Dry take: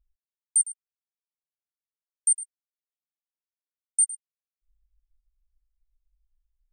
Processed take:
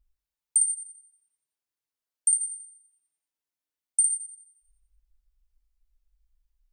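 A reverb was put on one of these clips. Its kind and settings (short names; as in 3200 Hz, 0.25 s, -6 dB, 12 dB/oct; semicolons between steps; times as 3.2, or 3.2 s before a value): FDN reverb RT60 0.86 s, low-frequency decay 0.9×, high-frequency decay 0.9×, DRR 4 dB; gain +2 dB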